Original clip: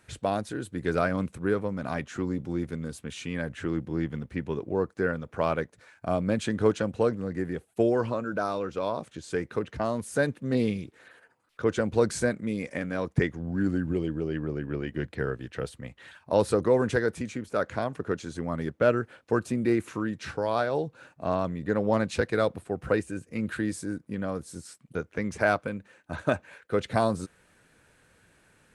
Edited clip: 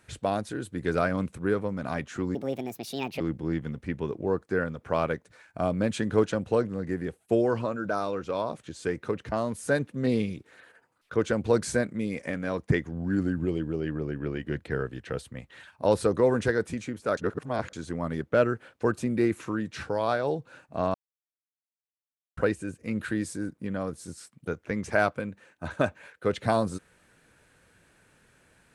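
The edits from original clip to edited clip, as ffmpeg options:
ffmpeg -i in.wav -filter_complex "[0:a]asplit=7[link_01][link_02][link_03][link_04][link_05][link_06][link_07];[link_01]atrim=end=2.354[link_08];[link_02]atrim=start=2.35:end=3.68,asetpts=PTS-STARTPTS,asetrate=68796,aresample=44100,atrim=end_sample=37598,asetpts=PTS-STARTPTS[link_09];[link_03]atrim=start=3.676:end=17.652[link_10];[link_04]atrim=start=17.648:end=18.212,asetpts=PTS-STARTPTS,areverse[link_11];[link_05]atrim=start=18.208:end=21.42,asetpts=PTS-STARTPTS,afade=type=out:start_time=3.208:duration=0.004:curve=hsin[link_12];[link_06]atrim=start=21.42:end=22.85,asetpts=PTS-STARTPTS,volume=0[link_13];[link_07]atrim=start=22.85,asetpts=PTS-STARTPTS,afade=type=in:duration=0.004:curve=hsin[link_14];[link_08][link_09]acrossfade=duration=0.004:curve1=hsin:curve2=hsin[link_15];[link_15][link_10]acrossfade=duration=0.004:curve1=hsin:curve2=hsin[link_16];[link_16][link_11]acrossfade=duration=0.004:curve1=hsin:curve2=hsin[link_17];[link_12][link_13][link_14]concat=n=3:v=0:a=1[link_18];[link_17][link_18]acrossfade=duration=0.004:curve1=hsin:curve2=hsin" out.wav

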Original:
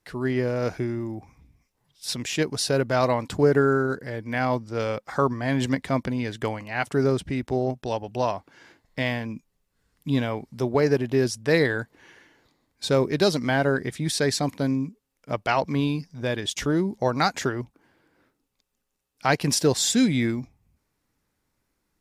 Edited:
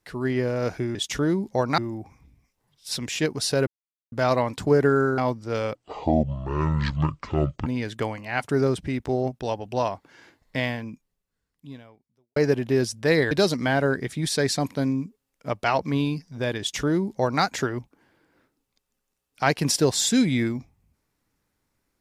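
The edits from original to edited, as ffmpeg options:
ffmpeg -i in.wav -filter_complex "[0:a]asplit=9[link_01][link_02][link_03][link_04][link_05][link_06][link_07][link_08][link_09];[link_01]atrim=end=0.952[link_10];[link_02]atrim=start=16.418:end=17.252[link_11];[link_03]atrim=start=0.948:end=2.84,asetpts=PTS-STARTPTS,afade=type=out:start_time=1.888:duration=0.004:curve=hsin,apad=pad_dur=0.45[link_12];[link_04]atrim=start=2.84:end=3.902,asetpts=PTS-STARTPTS,afade=type=in:duration=0.004:curve=hsin[link_13];[link_05]atrim=start=4.428:end=5.004[link_14];[link_06]atrim=start=5:end=6.09,asetpts=PTS-STARTPTS,asetrate=25137,aresample=44100[link_15];[link_07]atrim=start=6.086:end=10.79,asetpts=PTS-STARTPTS,afade=type=out:start_time=2.964:duration=1.74:curve=qua[link_16];[link_08]atrim=start=10.79:end=11.742,asetpts=PTS-STARTPTS,afade=type=in:duration=0.004:curve=hsin[link_17];[link_09]atrim=start=13.138[link_18];[link_10][link_11]acrossfade=duration=0.004:curve1=hsin:curve2=hsin[link_19];[link_12][link_13]concat=n=2:v=0:a=1[link_20];[link_19][link_20]acrossfade=duration=0.004:curve1=hsin:curve2=hsin[link_21];[link_21][link_14]acrossfade=duration=0.004:curve1=hsin:curve2=hsin[link_22];[link_22][link_15]acrossfade=duration=0.004:curve1=hsin:curve2=hsin[link_23];[link_16][link_17]concat=n=2:v=0:a=1[link_24];[link_23][link_24]acrossfade=duration=0.004:curve1=hsin:curve2=hsin[link_25];[link_25][link_18]acrossfade=duration=0.004:curve1=hsin:curve2=hsin" out.wav

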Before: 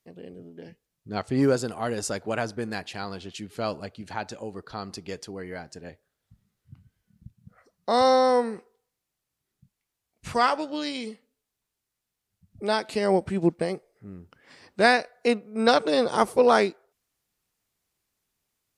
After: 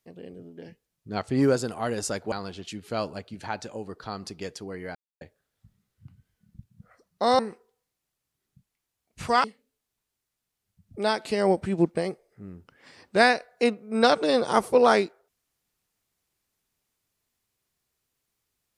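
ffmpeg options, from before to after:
ffmpeg -i in.wav -filter_complex "[0:a]asplit=6[link_01][link_02][link_03][link_04][link_05][link_06];[link_01]atrim=end=2.322[link_07];[link_02]atrim=start=2.988:end=5.62,asetpts=PTS-STARTPTS,afade=type=out:start_time=2.628:duration=0.004:curve=hsin[link_08];[link_03]atrim=start=5.62:end=5.88,asetpts=PTS-STARTPTS,volume=0[link_09];[link_04]atrim=start=5.88:end=8.062,asetpts=PTS-STARTPTS,afade=type=in:duration=0.004:curve=hsin[link_10];[link_05]atrim=start=8.448:end=10.502[link_11];[link_06]atrim=start=11.078[link_12];[link_08][link_09][link_10]concat=n=3:v=0:a=1[link_13];[link_07][link_13]acrossfade=duration=0.004:curve1=hsin:curve2=hsin[link_14];[link_14][link_11]acrossfade=duration=0.004:curve1=hsin:curve2=hsin[link_15];[link_15][link_12]acrossfade=duration=0.004:curve1=hsin:curve2=hsin" out.wav

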